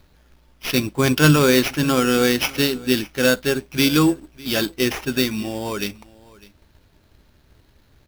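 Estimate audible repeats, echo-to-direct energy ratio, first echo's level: 1, -22.0 dB, -22.0 dB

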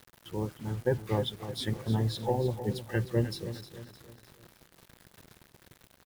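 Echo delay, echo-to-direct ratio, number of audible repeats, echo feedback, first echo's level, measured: 0.307 s, -11.0 dB, 4, 43%, -12.0 dB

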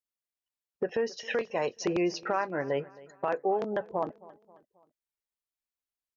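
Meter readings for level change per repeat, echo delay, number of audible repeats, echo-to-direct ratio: -6.5 dB, 0.268 s, 3, -20.0 dB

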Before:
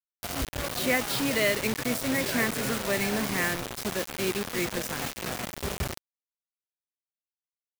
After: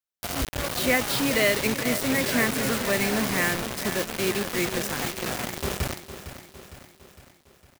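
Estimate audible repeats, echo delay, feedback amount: 5, 0.457 s, 54%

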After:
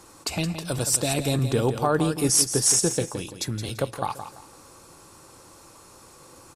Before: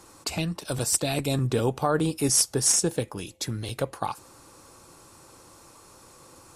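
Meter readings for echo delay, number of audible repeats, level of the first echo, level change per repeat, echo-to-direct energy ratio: 0.169 s, 3, -10.0 dB, -11.0 dB, -9.5 dB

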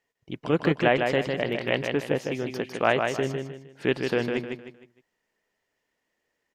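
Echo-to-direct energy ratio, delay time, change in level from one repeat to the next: -4.5 dB, 0.154 s, -9.5 dB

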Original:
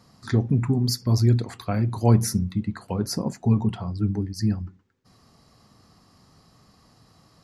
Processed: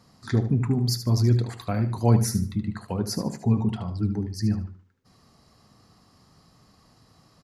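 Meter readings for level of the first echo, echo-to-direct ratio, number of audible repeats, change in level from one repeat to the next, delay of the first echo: -10.5 dB, -10.0 dB, 3, -11.5 dB, 75 ms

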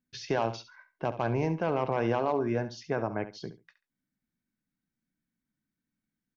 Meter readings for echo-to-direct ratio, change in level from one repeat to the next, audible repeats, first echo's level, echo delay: -13.0 dB, -14.5 dB, 2, -13.0 dB, 69 ms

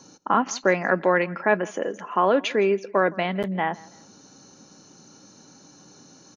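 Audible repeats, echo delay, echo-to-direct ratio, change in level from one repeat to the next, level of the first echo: 2, 0.164 s, -22.0 dB, -9.0 dB, -22.5 dB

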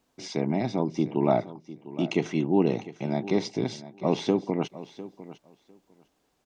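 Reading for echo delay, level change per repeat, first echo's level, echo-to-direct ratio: 0.702 s, -16.5 dB, -16.0 dB, -16.0 dB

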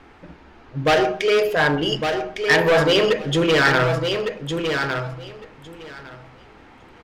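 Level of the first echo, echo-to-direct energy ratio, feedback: -6.0 dB, -6.0 dB, 16%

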